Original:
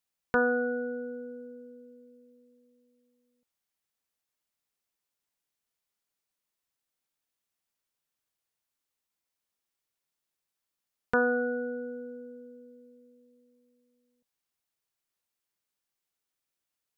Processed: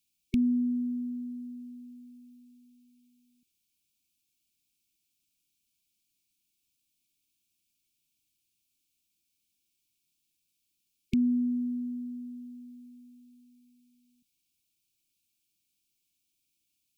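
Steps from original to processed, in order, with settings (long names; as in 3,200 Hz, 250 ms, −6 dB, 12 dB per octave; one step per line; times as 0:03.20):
linear-phase brick-wall band-stop 370–2,200 Hz
level +8 dB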